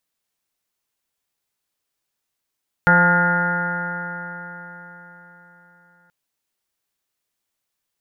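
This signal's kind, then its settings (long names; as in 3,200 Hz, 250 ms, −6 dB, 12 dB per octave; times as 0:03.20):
stiff-string partials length 3.23 s, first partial 173 Hz, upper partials −14.5/−5/−11.5/−1.5/−16.5/−15/5/−5/−7/−14 dB, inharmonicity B 0.0009, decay 4.24 s, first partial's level −17 dB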